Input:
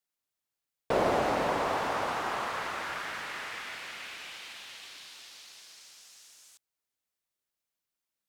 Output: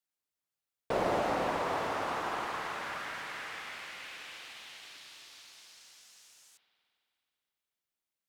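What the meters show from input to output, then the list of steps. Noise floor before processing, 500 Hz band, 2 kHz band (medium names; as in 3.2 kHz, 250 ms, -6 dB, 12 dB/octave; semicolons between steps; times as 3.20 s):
under -85 dBFS, -3.0 dB, -3.0 dB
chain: spring tank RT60 2.7 s, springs 53 ms, chirp 45 ms, DRR 5.5 dB; trim -4 dB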